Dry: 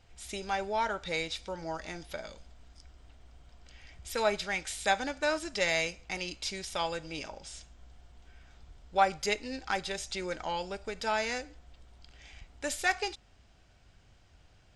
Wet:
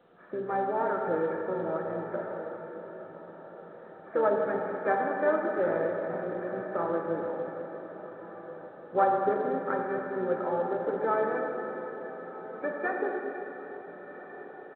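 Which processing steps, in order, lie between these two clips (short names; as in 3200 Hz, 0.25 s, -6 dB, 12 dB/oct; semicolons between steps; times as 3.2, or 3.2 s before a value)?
sample sorter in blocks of 8 samples; elliptic high-pass 160 Hz, stop band 70 dB; in parallel at +1.5 dB: compressor 16:1, threshold -44 dBFS, peak gain reduction 25.5 dB; on the sum: rippled Chebyshev low-pass 1800 Hz, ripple 9 dB; on a send: diffused feedback echo 1.445 s, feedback 43%, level -14 dB; on the sum: harmoniser -7 st -13 dB, +5 st -18 dB; plate-style reverb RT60 3.5 s, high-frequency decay 1×, DRR -0.5 dB; gain +5 dB; A-law 64 kbps 8000 Hz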